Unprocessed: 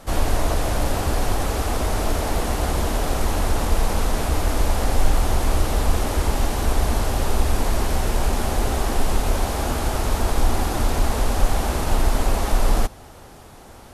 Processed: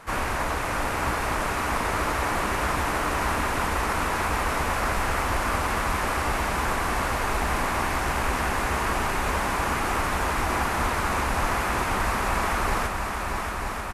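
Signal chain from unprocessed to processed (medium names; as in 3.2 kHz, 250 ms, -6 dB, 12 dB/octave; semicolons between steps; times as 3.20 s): high-pass 68 Hz 6 dB/octave; high-order bell 1.6 kHz +10.5 dB; harmony voices -3 st -3 dB; multi-head delay 314 ms, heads second and third, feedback 73%, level -8 dB; trim -7.5 dB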